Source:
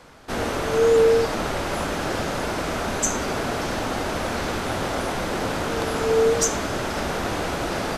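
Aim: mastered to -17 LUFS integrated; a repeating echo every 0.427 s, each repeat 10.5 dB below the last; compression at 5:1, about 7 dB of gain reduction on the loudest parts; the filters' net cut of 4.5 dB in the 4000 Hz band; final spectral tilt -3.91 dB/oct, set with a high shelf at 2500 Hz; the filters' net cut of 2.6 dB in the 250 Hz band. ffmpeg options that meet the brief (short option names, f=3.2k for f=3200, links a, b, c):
-af "equalizer=f=250:t=o:g=-3.5,highshelf=f=2.5k:g=3,equalizer=f=4k:t=o:g=-9,acompressor=threshold=-22dB:ratio=5,aecho=1:1:427|854|1281:0.299|0.0896|0.0269,volume=10dB"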